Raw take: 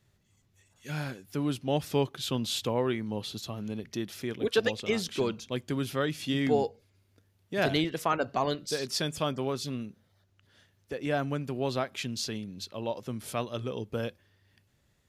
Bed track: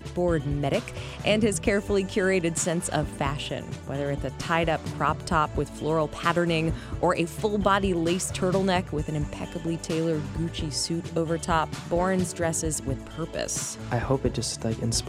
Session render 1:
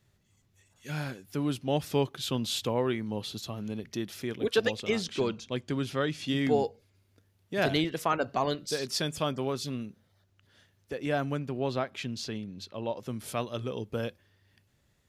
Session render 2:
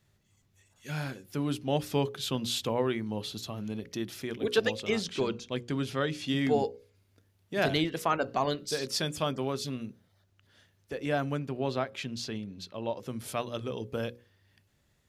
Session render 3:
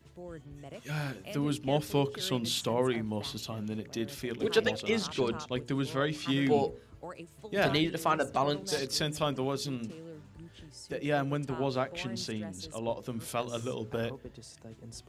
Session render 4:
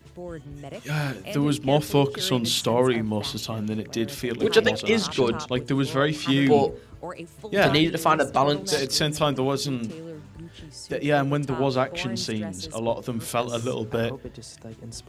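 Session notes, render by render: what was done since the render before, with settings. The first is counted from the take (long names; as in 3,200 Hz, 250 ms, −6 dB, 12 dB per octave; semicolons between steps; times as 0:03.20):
0:04.98–0:06.28: low-pass filter 7,900 Hz; 0:11.39–0:13.00: low-pass filter 3,600 Hz 6 dB per octave
mains-hum notches 60/120/180/240/300/360/420/480/540 Hz
mix in bed track −20.5 dB
level +8 dB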